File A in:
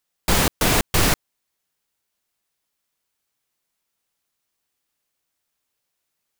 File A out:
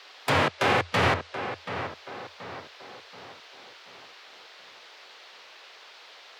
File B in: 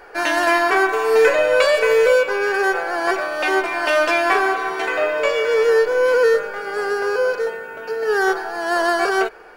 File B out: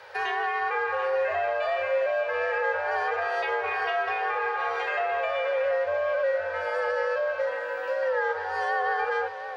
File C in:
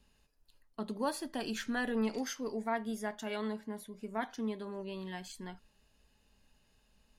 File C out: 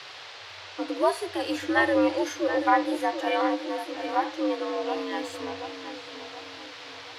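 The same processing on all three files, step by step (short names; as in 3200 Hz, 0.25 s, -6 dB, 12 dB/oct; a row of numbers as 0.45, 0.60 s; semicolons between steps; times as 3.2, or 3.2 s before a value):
treble ducked by the level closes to 2600 Hz, closed at -15 dBFS; tone controls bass -10 dB, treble -6 dB; harmonic-percussive split percussive -14 dB; high shelf 11000 Hz +9 dB; in parallel at +1 dB: compressor, threshold -27 dBFS; on the sum: limiter -13 dBFS; frequency shift +85 Hz; on a send: tape echo 0.729 s, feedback 50%, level -8.5 dB, low-pass 2300 Hz; on the sum: band noise 420–4500 Hz -51 dBFS; match loudness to -27 LUFS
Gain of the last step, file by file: +1.0, -7.0, +7.5 dB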